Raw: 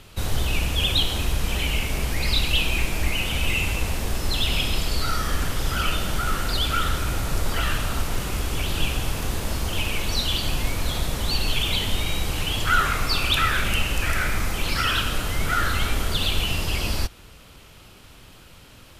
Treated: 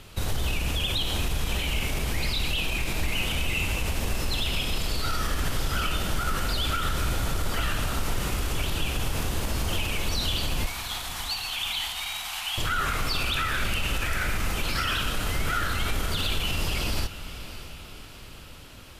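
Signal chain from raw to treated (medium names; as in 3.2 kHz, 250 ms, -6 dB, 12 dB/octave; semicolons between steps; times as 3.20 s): peak limiter -18 dBFS, peak gain reduction 10.5 dB; 10.66–12.58 s: steep high-pass 690 Hz 96 dB/octave; echo that smears into a reverb 604 ms, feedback 52%, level -13 dB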